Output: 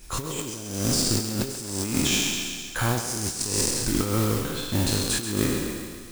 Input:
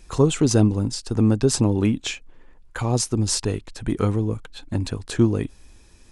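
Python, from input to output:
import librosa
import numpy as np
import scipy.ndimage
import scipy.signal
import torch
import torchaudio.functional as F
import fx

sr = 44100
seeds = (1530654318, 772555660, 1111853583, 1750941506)

p1 = fx.spec_trails(x, sr, decay_s=1.67)
p2 = fx.high_shelf(p1, sr, hz=6500.0, db=11.5)
p3 = fx.notch(p2, sr, hz=450.0, q=12.0)
p4 = fx.over_compress(p3, sr, threshold_db=-20.0, ratio=-0.5)
p5 = fx.mod_noise(p4, sr, seeds[0], snr_db=11)
p6 = p5 + fx.echo_thinned(p5, sr, ms=134, feedback_pct=58, hz=420.0, wet_db=-9, dry=0)
y = p6 * 10.0 ** (-5.5 / 20.0)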